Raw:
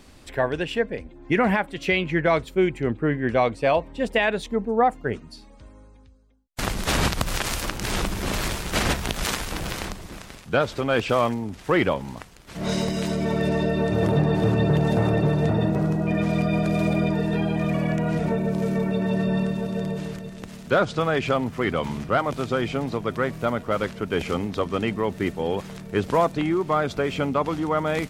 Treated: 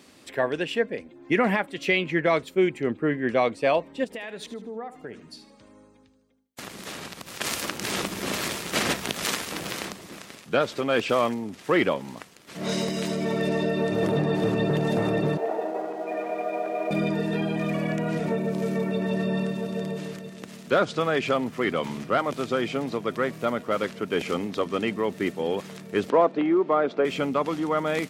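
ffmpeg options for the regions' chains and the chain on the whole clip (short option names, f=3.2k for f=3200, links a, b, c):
-filter_complex "[0:a]asettb=1/sr,asplit=3[a][b][c];[a]atrim=end=4.044[d];[b]atrim=start=4.04:end=7.41,asetpts=PTS-STARTPTS,afade=t=in:d=0.004:c=qsin,afade=t=out:st=3.366:d=0.004:c=qsin,acompressor=threshold=-32dB:ratio=6:attack=3.2:release=140:knee=1:detection=peak,aecho=1:1:77|154|231|308:0.211|0.0782|0.0289|0.0107,atrim=end_sample=148617[e];[c]atrim=start=7.406[f];[d][e]acrossfade=d=0.004:c1=hsin:c2=qsin[g];[g][f]acrossfade=d=0.004:c1=qsin:c2=hsin,asettb=1/sr,asplit=3[h][i][j];[h]atrim=end=15.374[k];[i]atrim=start=15.37:end=16.91,asetpts=PTS-STARTPTS,afade=t=in:d=0.004:c=qsin,afade=t=out:st=1.536:d=0.004:c=qsin,highpass=f=380:w=0.5412,highpass=f=380:w=1.3066,equalizer=f=760:t=q:w=4:g=8,equalizer=f=1.3k:t=q:w=4:g=-4,equalizer=f=1.8k:t=q:w=4:g=-4,lowpass=f=2.1k:w=0.5412,lowpass=f=2.1k:w=1.3066,aeval=exprs='sgn(val(0))*max(abs(val(0))-0.00282,0)':c=same[l];[j]atrim=start=16.906[m];[k][l]acrossfade=d=0.004:c1=hsin:c2=qsin[n];[n][m]acrossfade=d=0.004:c1=qsin:c2=hsin,asettb=1/sr,asplit=3[o][p][q];[o]atrim=end=26.104[r];[p]atrim=start=26.1:end=27.05,asetpts=PTS-STARTPTS,afade=t=in:d=0.004:c=qsin,afade=t=out:st=0.946:d=0.004:c=qsin,highpass=310,lowpass=3.6k,tiltshelf=f=1.2k:g=6[s];[q]atrim=start=27.046[t];[r][s]acrossfade=d=0.004:c1=hsin:c2=qsin[u];[u][t]acrossfade=d=0.004:c1=qsin:c2=hsin,highpass=200,equalizer=f=850:t=o:w=0.8:g=-3.5,bandreject=f=1.5k:w=25"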